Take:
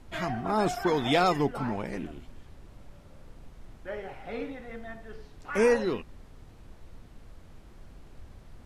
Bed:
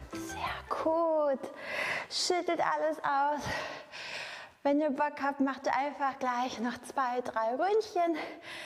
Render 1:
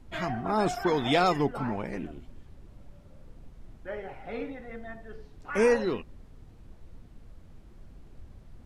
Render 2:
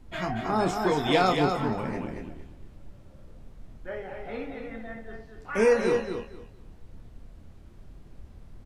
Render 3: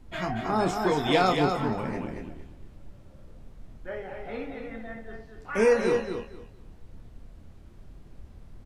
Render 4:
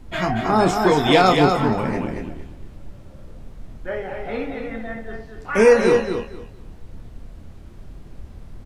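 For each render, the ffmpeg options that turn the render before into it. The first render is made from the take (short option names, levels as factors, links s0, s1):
-af "afftdn=nr=6:nf=-52"
-filter_complex "[0:a]asplit=2[s0][s1];[s1]adelay=27,volume=0.422[s2];[s0][s2]amix=inputs=2:normalize=0,aecho=1:1:232|464|696:0.531|0.111|0.0234"
-af anull
-af "volume=2.66,alimiter=limit=0.708:level=0:latency=1"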